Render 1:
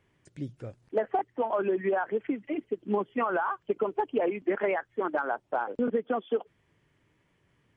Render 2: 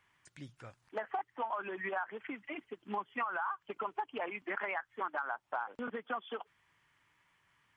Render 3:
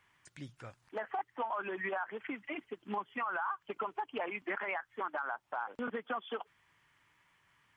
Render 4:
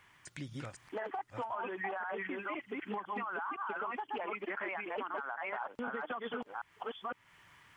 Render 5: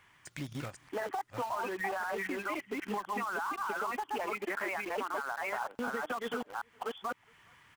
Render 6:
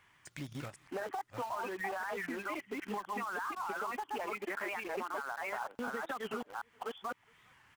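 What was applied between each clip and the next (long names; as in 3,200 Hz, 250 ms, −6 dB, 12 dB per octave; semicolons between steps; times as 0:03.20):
low shelf with overshoot 690 Hz −12.5 dB, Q 1.5; downward compressor 6 to 1, threshold −34 dBFS, peak gain reduction 11 dB; level +1 dB
brickwall limiter −28.5 dBFS, peak gain reduction 5.5 dB; level +2 dB
delay that plays each chunk backwards 509 ms, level −1 dB; downward compressor 2.5 to 1, threshold −48 dBFS, peak gain reduction 11.5 dB; level +7 dB
slap from a distant wall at 71 metres, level −28 dB; in parallel at −7 dB: bit reduction 7 bits
wow of a warped record 45 rpm, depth 160 cents; level −3 dB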